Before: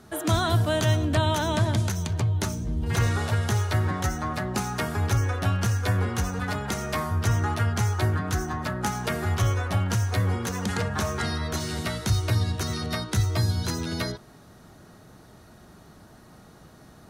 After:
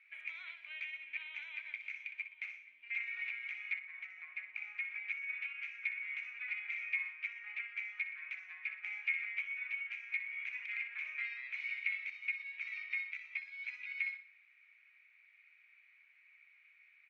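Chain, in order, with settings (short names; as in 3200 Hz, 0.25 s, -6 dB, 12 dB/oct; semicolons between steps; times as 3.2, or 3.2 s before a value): 3.79–4.96 tilt -2 dB/oct; feedback echo 61 ms, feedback 38%, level -11 dB; limiter -20.5 dBFS, peak gain reduction 10 dB; Butterworth band-pass 2300 Hz, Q 7.4; gain +11 dB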